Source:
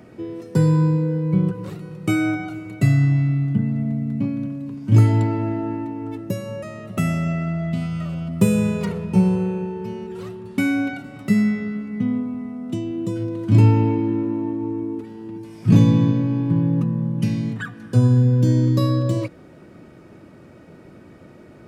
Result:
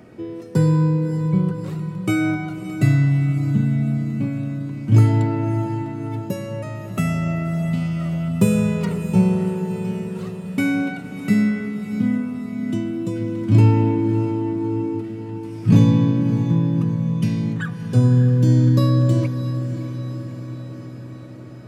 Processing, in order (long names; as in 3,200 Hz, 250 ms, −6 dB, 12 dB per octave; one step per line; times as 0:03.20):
feedback delay with all-pass diffusion 610 ms, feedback 62%, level −11 dB